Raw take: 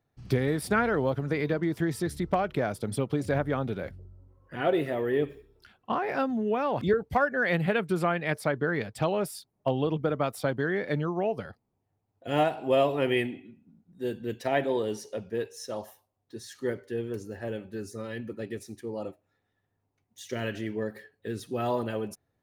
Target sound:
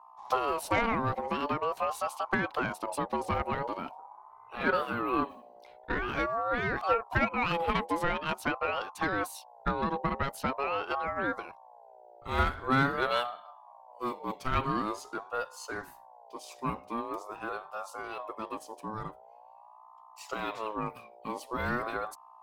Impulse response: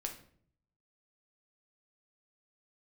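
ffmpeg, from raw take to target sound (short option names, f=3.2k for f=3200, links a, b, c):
-af "aeval=exprs='0.224*(cos(1*acos(clip(val(0)/0.224,-1,1)))-cos(1*PI/2))+0.02*(cos(4*acos(clip(val(0)/0.224,-1,1)))-cos(4*PI/2))':c=same,aeval=exprs='val(0)+0.00316*(sin(2*PI*60*n/s)+sin(2*PI*2*60*n/s)/2+sin(2*PI*3*60*n/s)/3+sin(2*PI*4*60*n/s)/4+sin(2*PI*5*60*n/s)/5)':c=same,aeval=exprs='val(0)*sin(2*PI*810*n/s+810*0.2/0.45*sin(2*PI*0.45*n/s))':c=same"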